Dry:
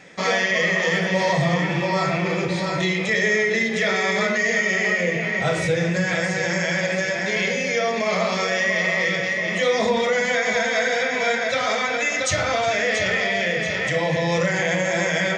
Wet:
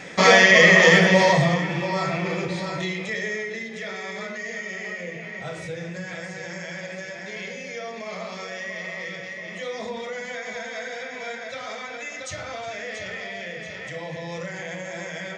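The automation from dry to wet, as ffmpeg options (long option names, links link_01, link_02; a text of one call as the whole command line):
ffmpeg -i in.wav -af "volume=7.5dB,afade=type=out:start_time=0.88:duration=0.75:silence=0.281838,afade=type=out:start_time=2.33:duration=1.29:silence=0.375837" out.wav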